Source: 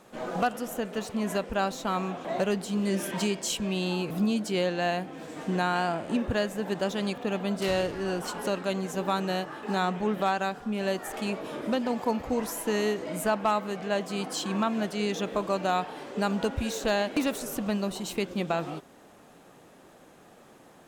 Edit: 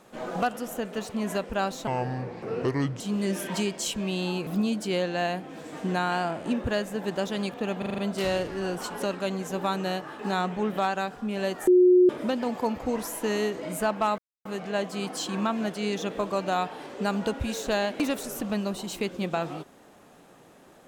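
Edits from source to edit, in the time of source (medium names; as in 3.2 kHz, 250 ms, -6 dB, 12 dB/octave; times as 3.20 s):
1.87–2.64 s: speed 68%
7.42 s: stutter 0.04 s, 6 plays
11.11–11.53 s: bleep 362 Hz -13.5 dBFS
13.62 s: insert silence 0.27 s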